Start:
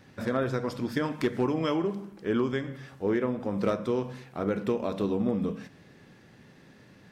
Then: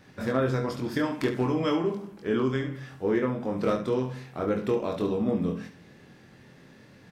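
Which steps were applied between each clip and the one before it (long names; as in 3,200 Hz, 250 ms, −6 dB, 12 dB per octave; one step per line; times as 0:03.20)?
ambience of single reflections 23 ms −4 dB, 70 ms −9.5 dB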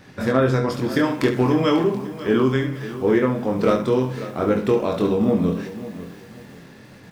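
feedback echo at a low word length 544 ms, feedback 35%, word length 8 bits, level −14 dB
level +7.5 dB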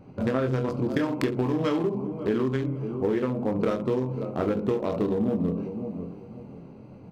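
adaptive Wiener filter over 25 samples
downward compressor, threshold −22 dBFS, peak gain reduction 9 dB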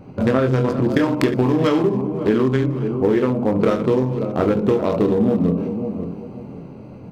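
delay that plays each chunk backwards 288 ms, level −12.5 dB
level +8 dB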